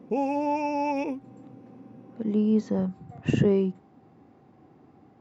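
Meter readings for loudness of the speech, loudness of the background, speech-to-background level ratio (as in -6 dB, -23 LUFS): -26.0 LUFS, -28.5 LUFS, 2.5 dB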